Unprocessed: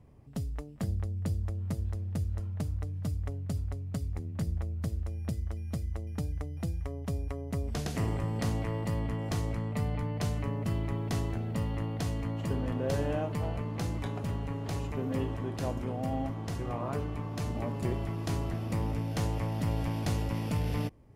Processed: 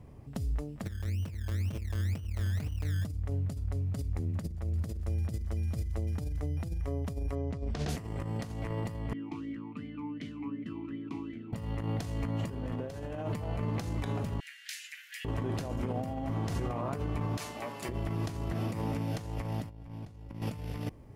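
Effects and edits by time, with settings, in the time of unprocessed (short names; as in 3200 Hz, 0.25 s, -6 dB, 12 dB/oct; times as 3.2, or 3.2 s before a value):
0.85–3.05 decimation with a swept rate 21×, swing 60% 2 Hz
4.14–6.44 thin delay 0.172 s, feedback 72%, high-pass 2100 Hz, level -19 dB
7.35–7.89 LPF 5000 Hz
9.13–11.53 vowel sweep i-u 2.7 Hz
14.4–15.25 steep high-pass 1600 Hz 72 dB/oct
17.37–17.89 HPF 1400 Hz 6 dB/oct
18.53–19.17 HPF 110 Hz
19.7–20.42 tilt -1.5 dB/oct
whole clip: negative-ratio compressor -35 dBFS, ratio -0.5; limiter -27.5 dBFS; gain +3 dB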